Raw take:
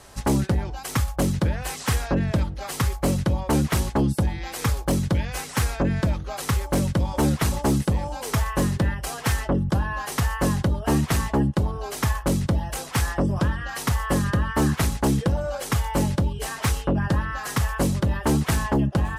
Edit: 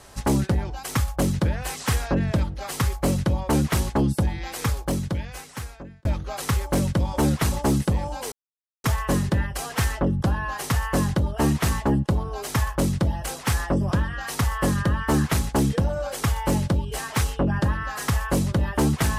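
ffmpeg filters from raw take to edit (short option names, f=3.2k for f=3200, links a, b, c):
-filter_complex "[0:a]asplit=3[a][b][c];[a]atrim=end=6.05,asetpts=PTS-STARTPTS,afade=t=out:st=4.49:d=1.56[d];[b]atrim=start=6.05:end=8.32,asetpts=PTS-STARTPTS,afade=t=in:d=0.004:c=hsin,afade=t=out:st=2.266:d=0.004:c=hsin,apad=pad_dur=0.52[e];[c]atrim=start=8.32,asetpts=PTS-STARTPTS,afade=t=in:d=0.004:c=hsin[f];[d][e][f]concat=n=3:v=0:a=1"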